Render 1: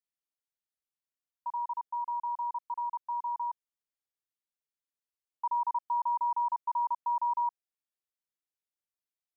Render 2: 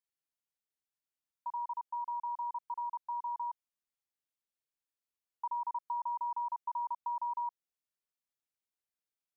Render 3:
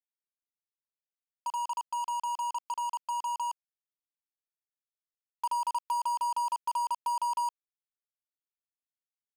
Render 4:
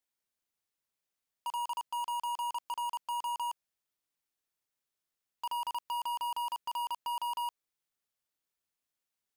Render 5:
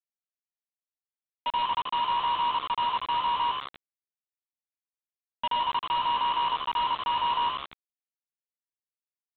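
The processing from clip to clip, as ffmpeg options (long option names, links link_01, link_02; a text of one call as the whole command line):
ffmpeg -i in.wav -af "acompressor=threshold=-31dB:ratio=6,volume=-2.5dB" out.wav
ffmpeg -i in.wav -af "acrusher=bits=6:mix=0:aa=0.5,volume=5.5dB" out.wav
ffmpeg -i in.wav -af "aeval=exprs='0.075*(cos(1*acos(clip(val(0)/0.075,-1,1)))-cos(1*PI/2))+0.0188*(cos(5*acos(clip(val(0)/0.075,-1,1)))-cos(5*PI/2))+0.00211*(cos(6*acos(clip(val(0)/0.075,-1,1)))-cos(6*PI/2))':channel_layout=same,asoftclip=type=tanh:threshold=-32.5dB" out.wav
ffmpeg -i in.wav -filter_complex "[0:a]asplit=8[link_01][link_02][link_03][link_04][link_05][link_06][link_07][link_08];[link_02]adelay=83,afreqshift=69,volume=-8dB[link_09];[link_03]adelay=166,afreqshift=138,volume=-12.7dB[link_10];[link_04]adelay=249,afreqshift=207,volume=-17.5dB[link_11];[link_05]adelay=332,afreqshift=276,volume=-22.2dB[link_12];[link_06]adelay=415,afreqshift=345,volume=-26.9dB[link_13];[link_07]adelay=498,afreqshift=414,volume=-31.7dB[link_14];[link_08]adelay=581,afreqshift=483,volume=-36.4dB[link_15];[link_01][link_09][link_10][link_11][link_12][link_13][link_14][link_15]amix=inputs=8:normalize=0,aresample=8000,acrusher=bits=6:mix=0:aa=0.000001,aresample=44100,volume=7.5dB" out.wav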